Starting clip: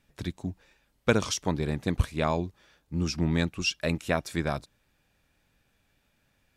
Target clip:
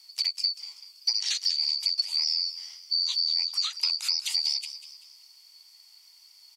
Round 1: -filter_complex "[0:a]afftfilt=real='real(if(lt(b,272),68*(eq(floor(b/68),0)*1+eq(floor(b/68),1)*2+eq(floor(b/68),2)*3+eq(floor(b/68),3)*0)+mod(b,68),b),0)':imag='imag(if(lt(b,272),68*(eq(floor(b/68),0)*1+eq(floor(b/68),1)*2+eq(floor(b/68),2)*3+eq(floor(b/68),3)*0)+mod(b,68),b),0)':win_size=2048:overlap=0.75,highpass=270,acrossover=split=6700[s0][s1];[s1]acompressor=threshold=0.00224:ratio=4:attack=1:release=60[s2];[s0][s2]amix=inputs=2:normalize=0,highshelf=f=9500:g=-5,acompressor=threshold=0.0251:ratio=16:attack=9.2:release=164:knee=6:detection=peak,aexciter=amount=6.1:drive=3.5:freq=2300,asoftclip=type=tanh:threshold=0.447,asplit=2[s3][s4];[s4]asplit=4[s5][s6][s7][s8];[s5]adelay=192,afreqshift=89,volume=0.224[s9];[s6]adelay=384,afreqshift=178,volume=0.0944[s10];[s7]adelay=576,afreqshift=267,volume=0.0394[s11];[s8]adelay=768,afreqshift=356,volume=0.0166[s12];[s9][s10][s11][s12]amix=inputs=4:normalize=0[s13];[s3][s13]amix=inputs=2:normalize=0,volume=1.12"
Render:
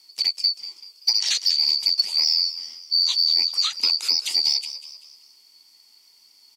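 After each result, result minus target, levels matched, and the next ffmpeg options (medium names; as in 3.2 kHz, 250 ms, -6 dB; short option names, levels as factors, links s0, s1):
250 Hz band +16.0 dB; compression: peak gain reduction -7.5 dB
-filter_complex "[0:a]afftfilt=real='real(if(lt(b,272),68*(eq(floor(b/68),0)*1+eq(floor(b/68),1)*2+eq(floor(b/68),2)*3+eq(floor(b/68),3)*0)+mod(b,68),b),0)':imag='imag(if(lt(b,272),68*(eq(floor(b/68),0)*1+eq(floor(b/68),1)*2+eq(floor(b/68),2)*3+eq(floor(b/68),3)*0)+mod(b,68),b),0)':win_size=2048:overlap=0.75,highpass=880,acrossover=split=6700[s0][s1];[s1]acompressor=threshold=0.00224:ratio=4:attack=1:release=60[s2];[s0][s2]amix=inputs=2:normalize=0,highshelf=f=9500:g=-5,acompressor=threshold=0.0251:ratio=16:attack=9.2:release=164:knee=6:detection=peak,aexciter=amount=6.1:drive=3.5:freq=2300,asoftclip=type=tanh:threshold=0.447,asplit=2[s3][s4];[s4]asplit=4[s5][s6][s7][s8];[s5]adelay=192,afreqshift=89,volume=0.224[s9];[s6]adelay=384,afreqshift=178,volume=0.0944[s10];[s7]adelay=576,afreqshift=267,volume=0.0394[s11];[s8]adelay=768,afreqshift=356,volume=0.0166[s12];[s9][s10][s11][s12]amix=inputs=4:normalize=0[s13];[s3][s13]amix=inputs=2:normalize=0,volume=1.12"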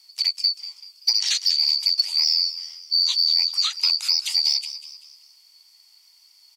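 compression: peak gain reduction -7.5 dB
-filter_complex "[0:a]afftfilt=real='real(if(lt(b,272),68*(eq(floor(b/68),0)*1+eq(floor(b/68),1)*2+eq(floor(b/68),2)*3+eq(floor(b/68),3)*0)+mod(b,68),b),0)':imag='imag(if(lt(b,272),68*(eq(floor(b/68),0)*1+eq(floor(b/68),1)*2+eq(floor(b/68),2)*3+eq(floor(b/68),3)*0)+mod(b,68),b),0)':win_size=2048:overlap=0.75,highpass=880,acrossover=split=6700[s0][s1];[s1]acompressor=threshold=0.00224:ratio=4:attack=1:release=60[s2];[s0][s2]amix=inputs=2:normalize=0,highshelf=f=9500:g=-5,acompressor=threshold=0.01:ratio=16:attack=9.2:release=164:knee=6:detection=peak,aexciter=amount=6.1:drive=3.5:freq=2300,asoftclip=type=tanh:threshold=0.447,asplit=2[s3][s4];[s4]asplit=4[s5][s6][s7][s8];[s5]adelay=192,afreqshift=89,volume=0.224[s9];[s6]adelay=384,afreqshift=178,volume=0.0944[s10];[s7]adelay=576,afreqshift=267,volume=0.0394[s11];[s8]adelay=768,afreqshift=356,volume=0.0166[s12];[s9][s10][s11][s12]amix=inputs=4:normalize=0[s13];[s3][s13]amix=inputs=2:normalize=0,volume=1.12"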